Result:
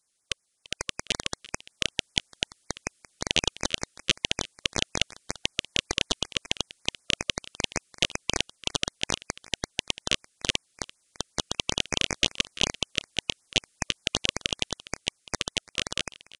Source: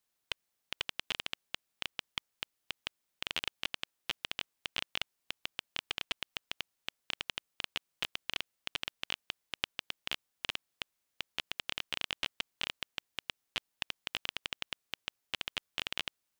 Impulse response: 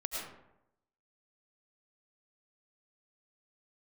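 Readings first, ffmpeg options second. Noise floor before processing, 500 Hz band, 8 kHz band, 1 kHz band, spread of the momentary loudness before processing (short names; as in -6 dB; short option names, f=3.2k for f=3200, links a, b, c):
-83 dBFS, +15.5 dB, +20.5 dB, +9.0 dB, 6 LU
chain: -filter_complex "[0:a]asplit=2[a][b];[b]alimiter=limit=-20dB:level=0:latency=1:release=28,volume=-1dB[c];[a][c]amix=inputs=2:normalize=0,dynaudnorm=f=280:g=11:m=8dB,crystalizer=i=2:c=0,asplit=2[d][e];[e]aecho=0:1:341:0.126[f];[d][f]amix=inputs=2:normalize=0,aeval=exprs='1.26*(cos(1*acos(clip(val(0)/1.26,-1,1)))-cos(1*PI/2))+0.0708*(cos(5*acos(clip(val(0)/1.26,-1,1)))-cos(5*PI/2))+0.158*(cos(6*acos(clip(val(0)/1.26,-1,1)))-cos(6*PI/2))+0.0447*(cos(7*acos(clip(val(0)/1.26,-1,1)))-cos(7*PI/2))':c=same,aresample=22050,aresample=44100,afftfilt=real='re*(1-between(b*sr/1024,770*pow(3600/770,0.5+0.5*sin(2*PI*5.3*pts/sr))/1.41,770*pow(3600/770,0.5+0.5*sin(2*PI*5.3*pts/sr))*1.41))':imag='im*(1-between(b*sr/1024,770*pow(3600/770,0.5+0.5*sin(2*PI*5.3*pts/sr))/1.41,770*pow(3600/770,0.5+0.5*sin(2*PI*5.3*pts/sr))*1.41))':win_size=1024:overlap=0.75,volume=-2dB"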